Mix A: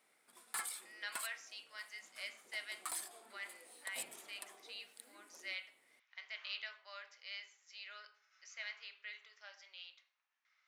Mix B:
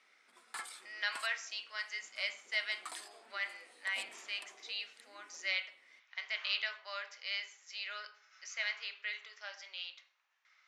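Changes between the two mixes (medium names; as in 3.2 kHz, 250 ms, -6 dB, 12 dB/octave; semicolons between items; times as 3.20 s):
speech +9.0 dB; background: add band-pass 190–6400 Hz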